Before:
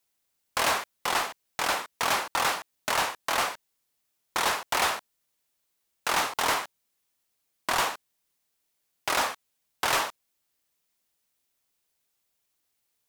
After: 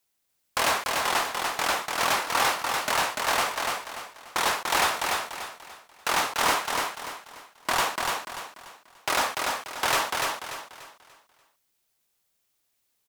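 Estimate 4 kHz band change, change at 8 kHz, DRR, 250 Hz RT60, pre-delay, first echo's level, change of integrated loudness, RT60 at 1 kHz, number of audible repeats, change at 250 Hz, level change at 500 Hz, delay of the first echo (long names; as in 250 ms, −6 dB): +3.0 dB, +3.0 dB, no reverb audible, no reverb audible, no reverb audible, −3.5 dB, +2.0 dB, no reverb audible, 4, +3.0 dB, +3.0 dB, 292 ms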